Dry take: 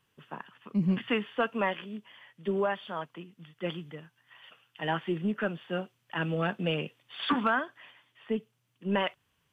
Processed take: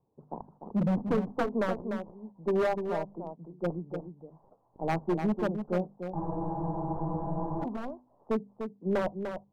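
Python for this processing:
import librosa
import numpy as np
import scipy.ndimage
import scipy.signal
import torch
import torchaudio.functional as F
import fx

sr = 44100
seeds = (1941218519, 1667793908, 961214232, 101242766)

p1 = fx.tracing_dist(x, sr, depth_ms=0.39)
p2 = scipy.signal.sosfilt(scipy.signal.butter(8, 890.0, 'lowpass', fs=sr, output='sos'), p1)
p3 = fx.low_shelf(p2, sr, hz=160.0, db=-3.5)
p4 = fx.hum_notches(p3, sr, base_hz=50, count=5)
p5 = 10.0 ** (-26.0 / 20.0) * (np.abs((p4 / 10.0 ** (-26.0 / 20.0) + 3.0) % 4.0 - 2.0) - 1.0)
p6 = p5 + fx.echo_single(p5, sr, ms=297, db=-7.5, dry=0)
p7 = fx.spec_freeze(p6, sr, seeds[0], at_s=6.18, hold_s=1.44)
y = F.gain(torch.from_numpy(p7), 4.5).numpy()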